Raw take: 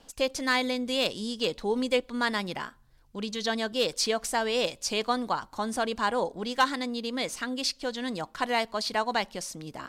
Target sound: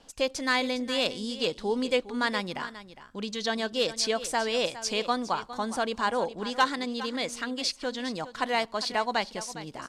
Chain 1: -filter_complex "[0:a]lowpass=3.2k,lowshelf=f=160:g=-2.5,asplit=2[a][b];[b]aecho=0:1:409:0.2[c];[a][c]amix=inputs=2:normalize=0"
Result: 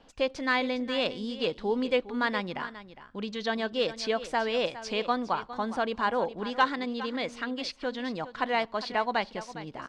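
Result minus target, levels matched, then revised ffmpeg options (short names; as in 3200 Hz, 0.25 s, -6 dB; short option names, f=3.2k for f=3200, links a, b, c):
8000 Hz band -12.0 dB
-filter_complex "[0:a]lowpass=9.9k,lowshelf=f=160:g=-2.5,asplit=2[a][b];[b]aecho=0:1:409:0.2[c];[a][c]amix=inputs=2:normalize=0"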